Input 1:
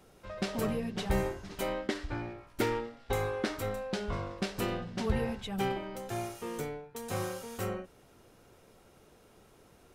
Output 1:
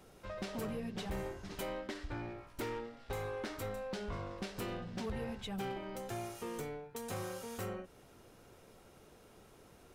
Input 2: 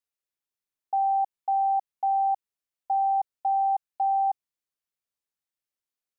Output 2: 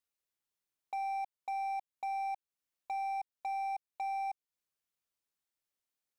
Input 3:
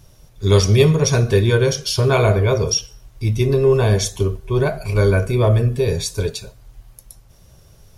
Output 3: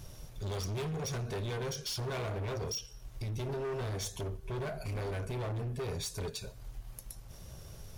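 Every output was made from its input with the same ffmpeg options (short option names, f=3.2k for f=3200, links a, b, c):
-af "acompressor=threshold=-41dB:ratio=2,volume=34dB,asoftclip=hard,volume=-34dB,aeval=exprs='0.0211*(cos(1*acos(clip(val(0)/0.0211,-1,1)))-cos(1*PI/2))+0.000422*(cos(6*acos(clip(val(0)/0.0211,-1,1)))-cos(6*PI/2))':c=same"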